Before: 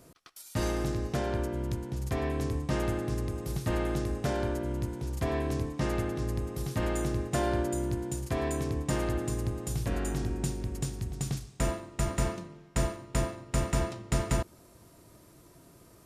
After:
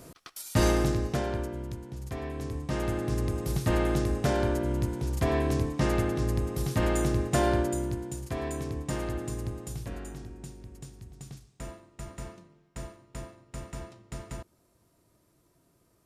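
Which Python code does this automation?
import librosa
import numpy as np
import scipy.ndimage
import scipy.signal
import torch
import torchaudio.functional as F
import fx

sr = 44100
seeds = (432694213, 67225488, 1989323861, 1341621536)

y = fx.gain(x, sr, db=fx.line((0.69, 7.0), (1.73, -5.0), (2.34, -5.0), (3.28, 4.0), (7.49, 4.0), (8.09, -2.5), (9.54, -2.5), (10.32, -11.5)))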